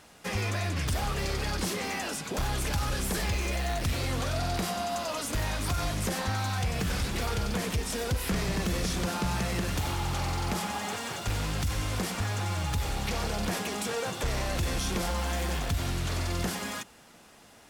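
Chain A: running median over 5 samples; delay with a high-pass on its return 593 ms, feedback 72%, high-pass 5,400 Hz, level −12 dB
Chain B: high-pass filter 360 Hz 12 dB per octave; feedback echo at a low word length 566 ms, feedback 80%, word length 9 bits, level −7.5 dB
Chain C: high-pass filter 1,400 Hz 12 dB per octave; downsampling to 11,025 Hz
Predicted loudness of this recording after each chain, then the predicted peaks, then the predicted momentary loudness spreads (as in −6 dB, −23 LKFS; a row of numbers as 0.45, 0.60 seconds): −31.5, −32.5, −37.5 LKFS; −22.0, −18.5, −23.0 dBFS; 2, 2, 2 LU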